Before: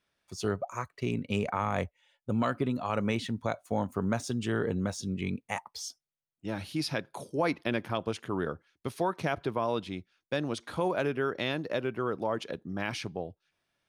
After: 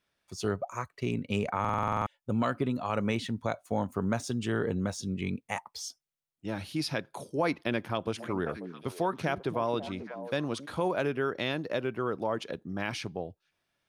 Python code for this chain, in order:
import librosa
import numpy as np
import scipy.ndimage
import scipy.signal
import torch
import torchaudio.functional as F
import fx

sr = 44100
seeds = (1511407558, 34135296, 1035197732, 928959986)

y = fx.echo_stepped(x, sr, ms=270, hz=230.0, octaves=1.4, feedback_pct=70, wet_db=-6.5, at=(8.05, 10.65), fade=0.02)
y = fx.buffer_glitch(y, sr, at_s=(1.6,), block=2048, repeats=9)